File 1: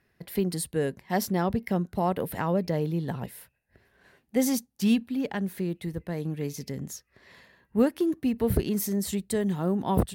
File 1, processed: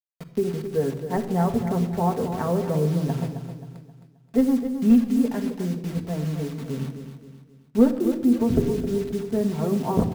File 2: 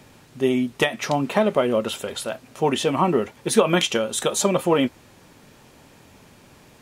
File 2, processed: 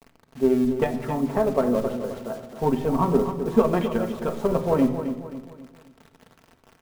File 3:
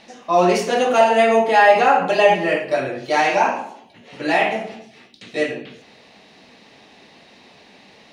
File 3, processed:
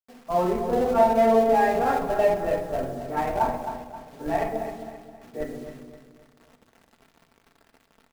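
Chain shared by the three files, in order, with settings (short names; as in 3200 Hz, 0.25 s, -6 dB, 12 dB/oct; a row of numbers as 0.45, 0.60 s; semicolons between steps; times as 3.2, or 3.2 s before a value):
Wiener smoothing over 15 samples; LPF 1200 Hz 12 dB/oct; flange 0.68 Hz, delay 7.1 ms, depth 1.1 ms, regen -27%; in parallel at -9 dB: Schmitt trigger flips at -19.5 dBFS; on the sum: requantised 8-bit, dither none; on a send: feedback echo 0.265 s, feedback 40%, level -10 dB; on the sum: shoebox room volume 3400 m³, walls furnished, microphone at 1.6 m; match loudness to -24 LUFS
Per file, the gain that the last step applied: +6.0, +1.0, -4.5 dB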